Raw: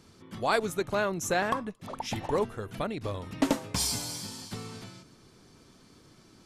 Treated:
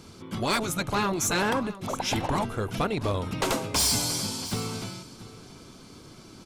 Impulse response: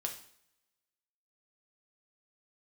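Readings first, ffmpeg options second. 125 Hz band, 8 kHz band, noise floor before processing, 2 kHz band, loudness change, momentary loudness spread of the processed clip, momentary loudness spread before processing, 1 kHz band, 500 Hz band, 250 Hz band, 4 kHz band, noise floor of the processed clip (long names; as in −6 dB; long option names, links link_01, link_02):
+6.5 dB, +7.0 dB, −58 dBFS, +3.0 dB, +4.0 dB, 15 LU, 12 LU, +3.5 dB, +0.5 dB, +3.5 dB, +7.0 dB, −49 dBFS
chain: -filter_complex "[0:a]afftfilt=real='re*lt(hypot(re,im),0.2)':imag='im*lt(hypot(re,im),0.2)':win_size=1024:overlap=0.75,bandreject=frequency=1800:width=8.3,aeval=exprs='0.158*sin(PI/2*2.51*val(0)/0.158)':channel_layout=same,asplit=2[link_01][link_02];[link_02]aecho=0:1:682:0.141[link_03];[link_01][link_03]amix=inputs=2:normalize=0,volume=-3dB"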